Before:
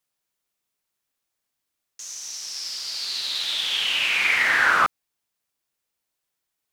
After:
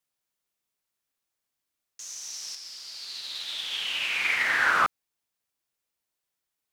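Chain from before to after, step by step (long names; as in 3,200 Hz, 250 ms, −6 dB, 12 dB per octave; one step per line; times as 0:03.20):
0:02.55–0:04.75: expander for the loud parts 1.5 to 1, over −30 dBFS
level −3.5 dB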